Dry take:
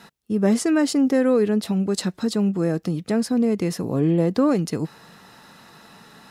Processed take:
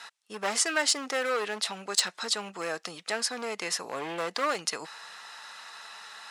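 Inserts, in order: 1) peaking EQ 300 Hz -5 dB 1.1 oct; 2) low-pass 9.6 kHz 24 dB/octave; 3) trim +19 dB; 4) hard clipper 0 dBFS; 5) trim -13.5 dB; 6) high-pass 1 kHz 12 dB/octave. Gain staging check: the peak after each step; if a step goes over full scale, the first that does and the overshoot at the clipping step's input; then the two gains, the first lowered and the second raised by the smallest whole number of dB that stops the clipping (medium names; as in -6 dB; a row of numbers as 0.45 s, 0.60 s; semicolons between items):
-11.0 dBFS, -11.0 dBFS, +8.0 dBFS, 0.0 dBFS, -13.5 dBFS, -12.0 dBFS; step 3, 8.0 dB; step 3 +11 dB, step 5 -5.5 dB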